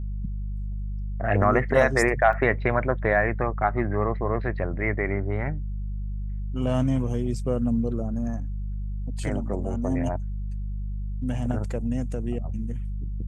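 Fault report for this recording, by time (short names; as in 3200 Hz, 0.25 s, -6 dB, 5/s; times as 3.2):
hum 50 Hz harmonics 4 -30 dBFS
2.33 gap 2.8 ms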